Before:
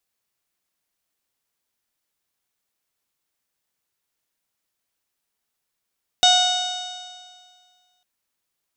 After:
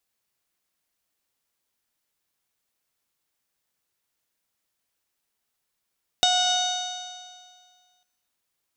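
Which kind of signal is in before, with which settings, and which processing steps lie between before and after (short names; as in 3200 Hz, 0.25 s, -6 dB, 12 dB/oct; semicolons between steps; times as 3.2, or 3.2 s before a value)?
stretched partials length 1.80 s, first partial 727 Hz, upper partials -10/-19/-4.5/3/-13/-9.5/-7.5/-12/-13 dB, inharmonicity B 0.0016, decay 1.90 s, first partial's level -16 dB
non-linear reverb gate 0.36 s flat, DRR 11.5 dB; compressor, threshold -18 dBFS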